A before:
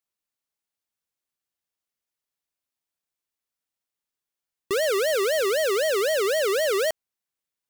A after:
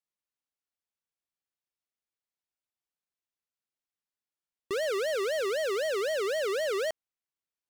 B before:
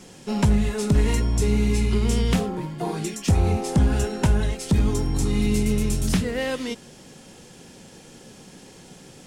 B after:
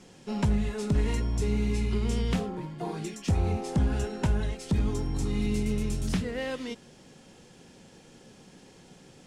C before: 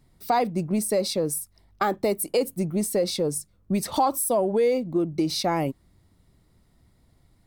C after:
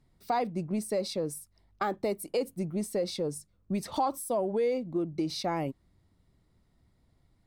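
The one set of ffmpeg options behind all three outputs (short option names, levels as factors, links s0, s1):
-af "highshelf=f=9600:g=-11.5,volume=0.473"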